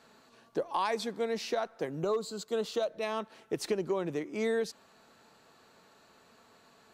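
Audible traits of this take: noise floor -62 dBFS; spectral tilt -4.5 dB/octave

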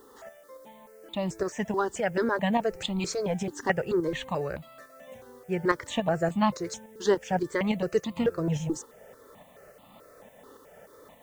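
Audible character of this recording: tremolo saw up 3.5 Hz, depth 50%; a quantiser's noise floor 12-bit, dither triangular; notches that jump at a steady rate 4.6 Hz 650–1600 Hz

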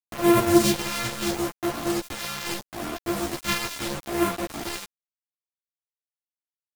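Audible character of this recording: a buzz of ramps at a fixed pitch in blocks of 128 samples; phasing stages 2, 0.76 Hz, lowest notch 450–4600 Hz; a quantiser's noise floor 6-bit, dither none; a shimmering, thickened sound

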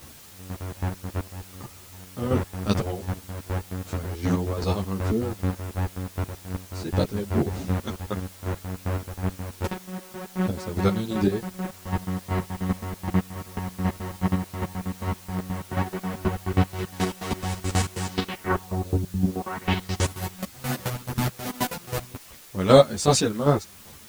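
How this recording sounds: chopped level 2.6 Hz, depth 60%, duty 30%; a quantiser's noise floor 8-bit, dither triangular; a shimmering, thickened sound

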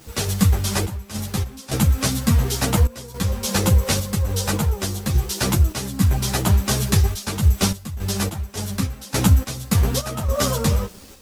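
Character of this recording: a quantiser's noise floor 8-bit, dither none; random-step tremolo, depth 85%; a shimmering, thickened sound

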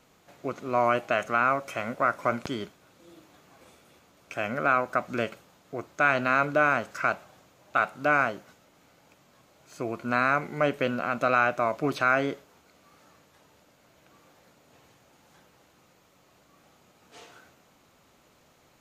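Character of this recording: noise floor -62 dBFS; spectral tilt -3.5 dB/octave

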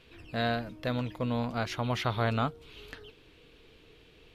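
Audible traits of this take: noise floor -59 dBFS; spectral tilt -5.0 dB/octave

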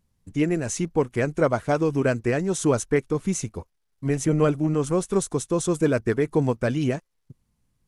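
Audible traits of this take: noise floor -73 dBFS; spectral tilt -5.5 dB/octave

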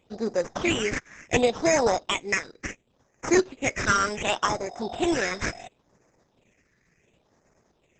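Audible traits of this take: aliases and images of a low sample rate 4.4 kHz, jitter 0%; phasing stages 6, 0.7 Hz, lowest notch 790–3100 Hz; Opus

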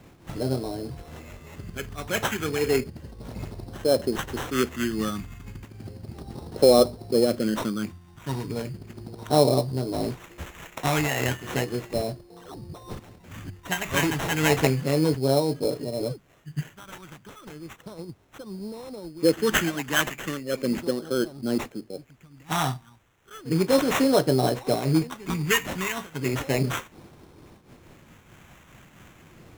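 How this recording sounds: a quantiser's noise floor 12-bit, dither triangular; phasing stages 2, 0.34 Hz, lowest notch 490–2400 Hz; aliases and images of a low sample rate 4.7 kHz, jitter 0%; random flutter of the level

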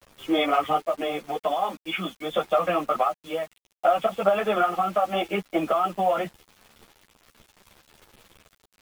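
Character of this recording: random-step tremolo 1.3 Hz; a quantiser's noise floor 8-bit, dither none; a shimmering, thickened sound

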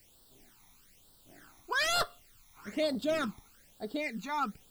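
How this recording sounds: a quantiser's noise floor 10-bit, dither triangular; phasing stages 12, 1.1 Hz, lowest notch 490–2300 Hz

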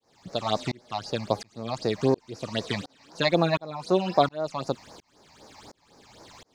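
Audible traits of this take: phasing stages 8, 3.9 Hz, lowest notch 410–3200 Hz; a quantiser's noise floor 12-bit, dither none; tremolo saw up 1.4 Hz, depth 100%

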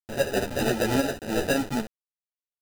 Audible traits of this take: a quantiser's noise floor 6-bit, dither none; tremolo saw up 1 Hz, depth 55%; aliases and images of a low sample rate 1.1 kHz, jitter 0%; a shimmering, thickened sound

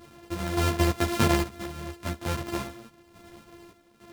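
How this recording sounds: a buzz of ramps at a fixed pitch in blocks of 128 samples; random-step tremolo, depth 75%; a shimmering, thickened sound

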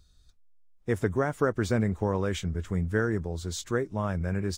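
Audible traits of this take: noise floor -61 dBFS; spectral tilt -6.5 dB/octave

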